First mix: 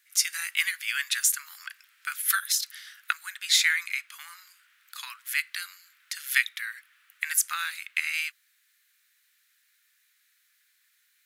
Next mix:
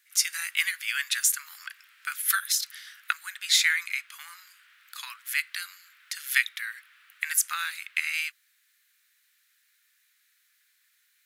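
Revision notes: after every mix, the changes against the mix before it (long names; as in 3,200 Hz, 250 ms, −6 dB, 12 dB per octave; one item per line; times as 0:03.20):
background +5.5 dB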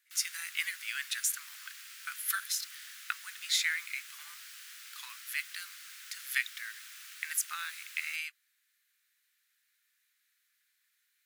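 speech −8.0 dB
background: remove high-frequency loss of the air 430 metres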